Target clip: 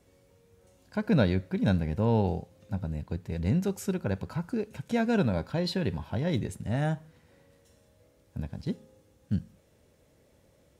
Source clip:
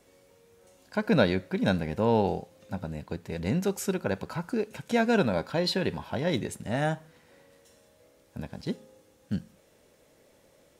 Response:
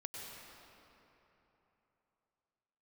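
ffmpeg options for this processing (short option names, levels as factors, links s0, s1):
-af "equalizer=f=78:w=0.5:g=13,volume=0.531"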